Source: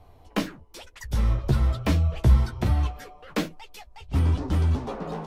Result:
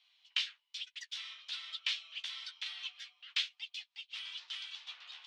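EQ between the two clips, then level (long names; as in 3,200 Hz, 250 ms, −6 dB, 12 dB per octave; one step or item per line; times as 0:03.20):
four-pole ladder high-pass 2,800 Hz, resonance 50%
high-frequency loss of the air 140 metres
high-shelf EQ 5,100 Hz −5 dB
+13.5 dB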